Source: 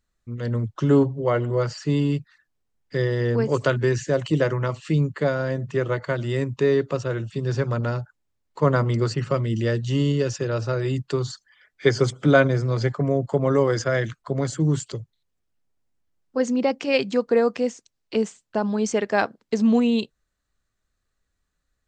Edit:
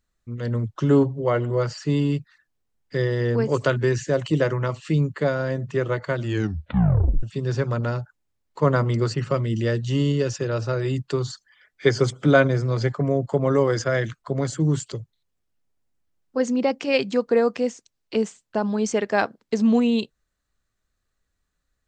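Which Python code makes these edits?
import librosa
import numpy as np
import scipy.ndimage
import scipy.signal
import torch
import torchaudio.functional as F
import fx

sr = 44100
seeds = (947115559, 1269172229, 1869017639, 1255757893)

y = fx.edit(x, sr, fx.tape_stop(start_s=6.23, length_s=1.0), tone=tone)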